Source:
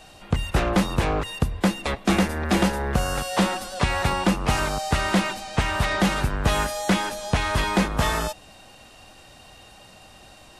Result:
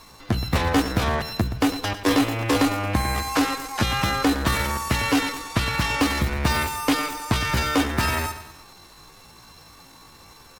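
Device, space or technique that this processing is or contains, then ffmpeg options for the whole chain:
chipmunk voice: -filter_complex "[0:a]asplit=3[s0][s1][s2];[s0]afade=t=out:st=2.32:d=0.02[s3];[s1]lowpass=11000,afade=t=in:st=2.32:d=0.02,afade=t=out:st=3.84:d=0.02[s4];[s2]afade=t=in:st=3.84:d=0.02[s5];[s3][s4][s5]amix=inputs=3:normalize=0,aecho=1:1:105|210|315|420|525:0.251|0.123|0.0603|0.0296|0.0145,asetrate=64194,aresample=44100,atempo=0.686977"

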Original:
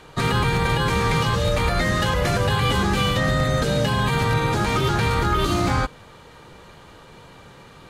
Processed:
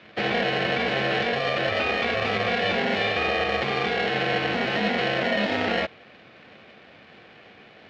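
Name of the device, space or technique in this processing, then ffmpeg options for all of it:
ring modulator pedal into a guitar cabinet: -af "aeval=exprs='val(0)*sgn(sin(2*PI*600*n/s))':c=same,highpass=95,equalizer=f=210:t=q:w=4:g=7,equalizer=f=980:t=q:w=4:g=-8,equalizer=f=2400:t=q:w=4:g=6,lowpass=f=4000:w=0.5412,lowpass=f=4000:w=1.3066,volume=0.631"

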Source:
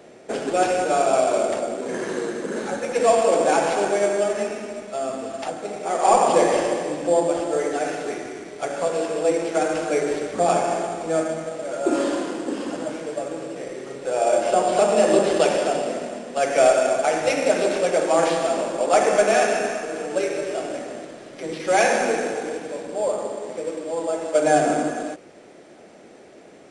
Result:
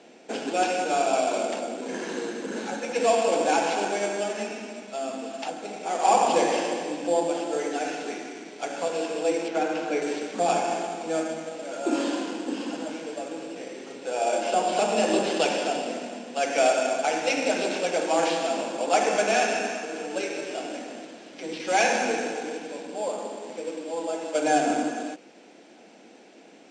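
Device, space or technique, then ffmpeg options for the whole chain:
television speaker: -filter_complex "[0:a]asettb=1/sr,asplit=3[s0][s1][s2];[s0]atrim=end=9.484[s3];[s1]atrim=start=9.48:end=10.02,asetpts=PTS-STARTPTS,afade=t=in:d=0.004:c=qsin,afade=t=out:st=0.536:d=0.004:c=qsin,aemphasis=mode=reproduction:type=50fm[s4];[s2]atrim=start=10.016[s5];[s3][s4]acrossfade=d=0.004:c1=hsin:c2=qsin[s6];[s6][s5]acrossfade=d=0.004:c1=qsin:c2=hsin,highpass=f=210:w=0.5412,highpass=f=210:w=1.3066,equalizer=f=390:t=q:w=4:g=-8,equalizer=f=590:t=q:w=4:g=-8,equalizer=f=1200:t=q:w=4:g=-8,equalizer=f=1900:t=q:w=4:g=-5,equalizer=f=2700:t=q:w=4:g=3,lowpass=f=7400:w=0.5412,lowpass=f=7400:w=1.3066"

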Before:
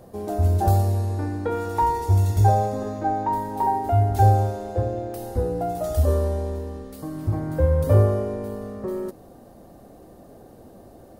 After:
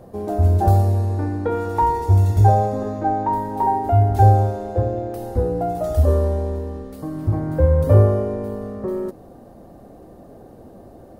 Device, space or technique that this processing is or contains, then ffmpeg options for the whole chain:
behind a face mask: -af "highshelf=f=2300:g=-8,volume=1.58"

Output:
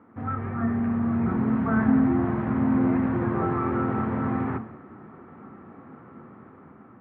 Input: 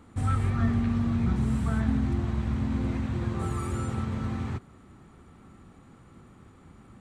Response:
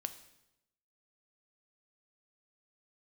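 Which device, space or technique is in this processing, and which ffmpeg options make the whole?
far laptop microphone: -filter_complex "[1:a]atrim=start_sample=2205[s0];[0:a][s0]afir=irnorm=-1:irlink=0,highpass=200,dynaudnorm=f=500:g=5:m=2.51,lowpass=f=1800:w=0.5412,lowpass=f=1800:w=1.3066,volume=1.5"

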